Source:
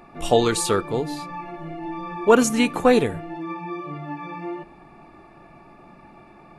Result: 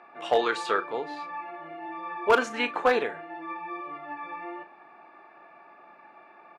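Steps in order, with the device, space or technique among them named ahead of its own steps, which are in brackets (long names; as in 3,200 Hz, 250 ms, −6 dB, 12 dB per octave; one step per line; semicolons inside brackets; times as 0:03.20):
megaphone (band-pass filter 590–2,700 Hz; parametric band 1,600 Hz +6 dB 0.23 octaves; hard clipping −12 dBFS, distortion −17 dB; double-tracking delay 37 ms −12.5 dB)
level −1 dB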